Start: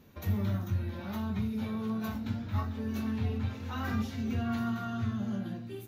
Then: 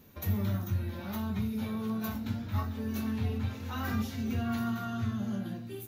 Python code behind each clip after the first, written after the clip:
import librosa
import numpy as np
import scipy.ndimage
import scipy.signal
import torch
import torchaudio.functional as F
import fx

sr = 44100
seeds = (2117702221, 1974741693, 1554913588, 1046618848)

y = fx.high_shelf(x, sr, hz=8400.0, db=11.0)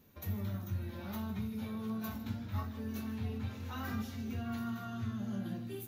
y = fx.rider(x, sr, range_db=10, speed_s=0.5)
y = y + 10.0 ** (-15.0 / 20.0) * np.pad(y, (int(154 * sr / 1000.0), 0))[:len(y)]
y = y * 10.0 ** (-6.0 / 20.0)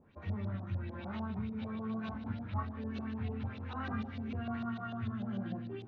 y = fx.filter_lfo_lowpass(x, sr, shape='saw_up', hz=6.7, low_hz=610.0, high_hz=4300.0, q=2.5)
y = fx.air_absorb(y, sr, metres=120.0)